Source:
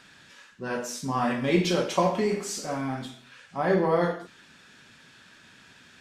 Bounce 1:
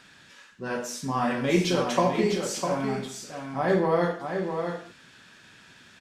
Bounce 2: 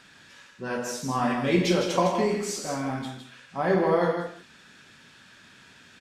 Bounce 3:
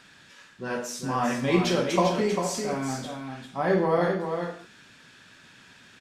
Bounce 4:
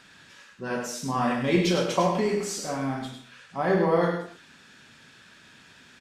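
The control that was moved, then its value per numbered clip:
echo, time: 0.653, 0.157, 0.396, 0.103 s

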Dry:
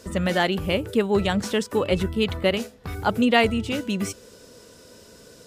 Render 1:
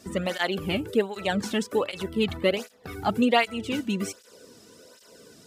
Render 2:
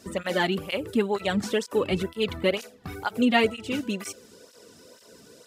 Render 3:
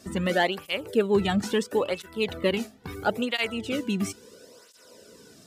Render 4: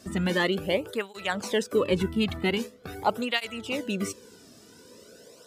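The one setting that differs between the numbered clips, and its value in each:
tape flanging out of phase, nulls at: 1.3, 2.1, 0.74, 0.44 Hz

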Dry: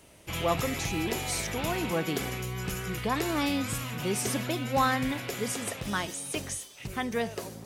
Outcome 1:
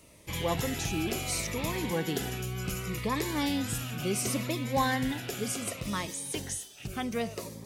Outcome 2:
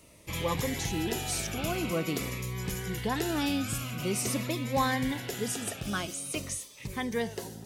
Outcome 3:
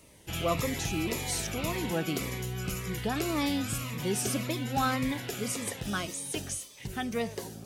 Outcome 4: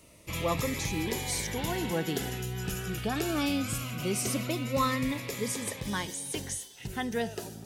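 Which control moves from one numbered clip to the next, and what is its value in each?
cascading phaser, rate: 0.68, 0.46, 1.8, 0.21 Hz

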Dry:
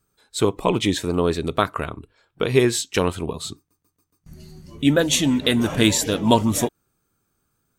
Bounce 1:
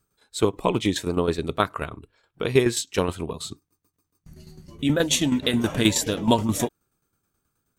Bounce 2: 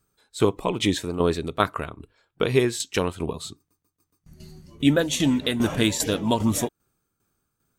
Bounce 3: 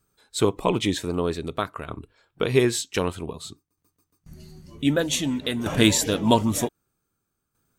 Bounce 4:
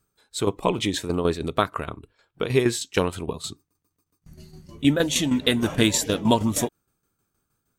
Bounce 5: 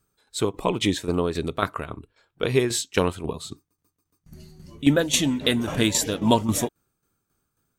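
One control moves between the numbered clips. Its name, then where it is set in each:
tremolo, rate: 9.4, 2.5, 0.53, 6.4, 3.7 Hz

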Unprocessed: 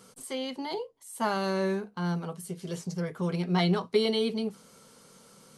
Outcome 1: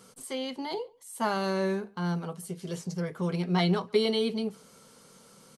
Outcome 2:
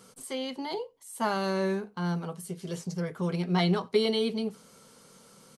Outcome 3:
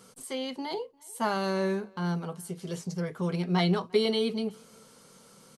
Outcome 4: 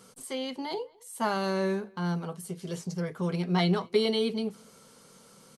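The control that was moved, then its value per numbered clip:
speakerphone echo, time: 140, 90, 350, 210 ms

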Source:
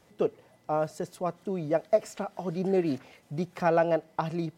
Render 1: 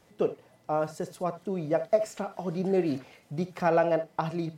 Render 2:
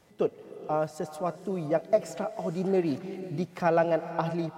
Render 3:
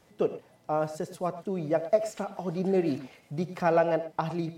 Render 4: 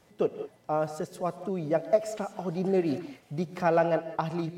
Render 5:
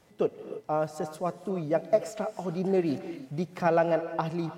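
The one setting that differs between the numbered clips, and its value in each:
non-linear reverb, gate: 90, 530, 130, 220, 350 ms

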